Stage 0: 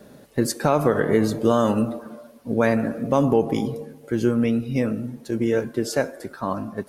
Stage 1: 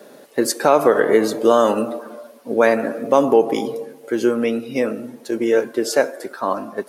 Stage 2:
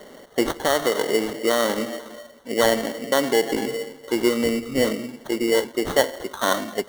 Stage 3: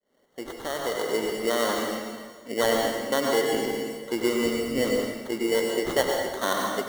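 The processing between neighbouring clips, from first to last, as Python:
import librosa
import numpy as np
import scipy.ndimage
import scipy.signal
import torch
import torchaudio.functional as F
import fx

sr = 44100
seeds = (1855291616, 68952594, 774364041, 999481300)

y1 = scipy.signal.sosfilt(scipy.signal.cheby1(2, 1.0, 400.0, 'highpass', fs=sr, output='sos'), x)
y1 = y1 * librosa.db_to_amplitude(6.5)
y2 = fx.rider(y1, sr, range_db=4, speed_s=0.5)
y2 = fx.sample_hold(y2, sr, seeds[0], rate_hz=2500.0, jitter_pct=0)
y2 = y2 * librosa.db_to_amplitude(-4.0)
y3 = fx.fade_in_head(y2, sr, length_s=1.38)
y3 = fx.rev_plate(y3, sr, seeds[1], rt60_s=1.2, hf_ratio=0.85, predelay_ms=85, drr_db=0.5)
y3 = y3 * librosa.db_to_amplitude(-5.5)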